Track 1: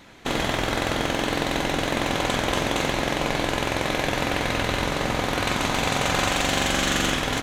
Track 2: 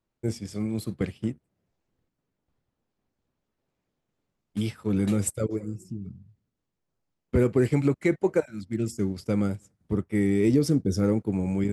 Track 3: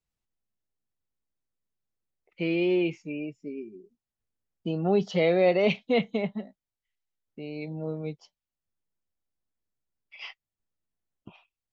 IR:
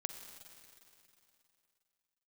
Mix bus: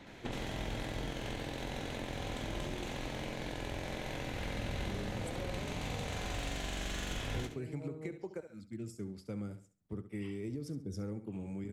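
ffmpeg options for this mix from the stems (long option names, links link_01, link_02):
-filter_complex "[0:a]equalizer=frequency=1200:width_type=o:width=0.66:gain=-6,volume=-2.5dB,asplit=2[link_01][link_02];[link_02]volume=-6dB[link_03];[1:a]volume=-13.5dB,asplit=2[link_04][link_05];[link_05]volume=-13dB[link_06];[2:a]volume=-8dB,asplit=2[link_07][link_08];[link_08]volume=-9.5dB[link_09];[link_01][link_07]amix=inputs=2:normalize=0,lowpass=frequency=2300:poles=1,acompressor=threshold=-32dB:ratio=6,volume=0dB[link_10];[link_03][link_06][link_09]amix=inputs=3:normalize=0,aecho=0:1:68|136|204|272:1|0.26|0.0676|0.0176[link_11];[link_04][link_10][link_11]amix=inputs=3:normalize=0,acrossover=split=120[link_12][link_13];[link_13]acompressor=threshold=-38dB:ratio=10[link_14];[link_12][link_14]amix=inputs=2:normalize=0"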